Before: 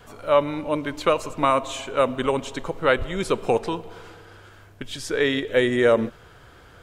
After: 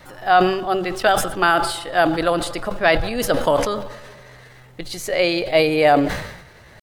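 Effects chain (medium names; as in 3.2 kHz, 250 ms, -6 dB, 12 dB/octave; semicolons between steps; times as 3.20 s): de-hum 76.92 Hz, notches 2; pitch shift +4 st; decay stretcher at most 64 dB/s; trim +3 dB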